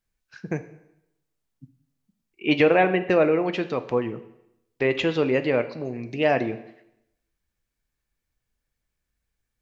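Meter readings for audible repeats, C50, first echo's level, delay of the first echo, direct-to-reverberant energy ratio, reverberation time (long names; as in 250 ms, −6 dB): no echo audible, 14.0 dB, no echo audible, no echo audible, 9.5 dB, 0.80 s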